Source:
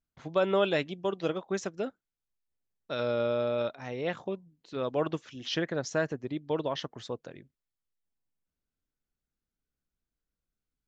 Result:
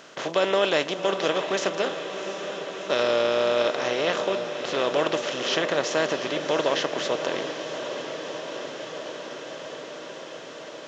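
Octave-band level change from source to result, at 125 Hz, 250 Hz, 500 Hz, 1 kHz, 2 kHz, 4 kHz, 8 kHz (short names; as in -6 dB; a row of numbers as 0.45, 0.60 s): -2.0 dB, +3.5 dB, +7.0 dB, +9.5 dB, +10.5 dB, +12.0 dB, n/a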